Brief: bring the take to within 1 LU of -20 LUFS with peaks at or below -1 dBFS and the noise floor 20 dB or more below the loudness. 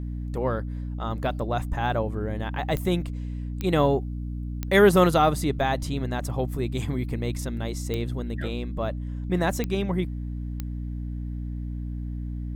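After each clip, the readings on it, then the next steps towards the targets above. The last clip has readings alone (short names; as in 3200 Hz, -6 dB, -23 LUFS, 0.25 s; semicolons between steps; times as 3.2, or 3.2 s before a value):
clicks 6; hum 60 Hz; harmonics up to 300 Hz; hum level -29 dBFS; loudness -27.0 LUFS; peak -4.0 dBFS; loudness target -20.0 LUFS
-> de-click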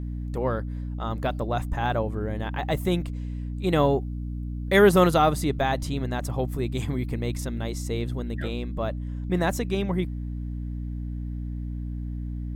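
clicks 0; hum 60 Hz; harmonics up to 300 Hz; hum level -29 dBFS
-> de-hum 60 Hz, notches 5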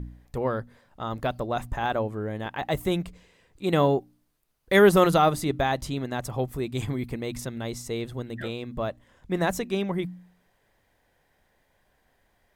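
hum none; loudness -27.0 LUFS; peak -5.5 dBFS; loudness target -20.0 LUFS
-> gain +7 dB; limiter -1 dBFS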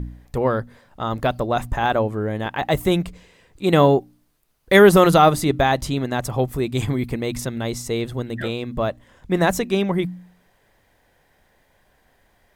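loudness -20.5 LUFS; peak -1.0 dBFS; noise floor -62 dBFS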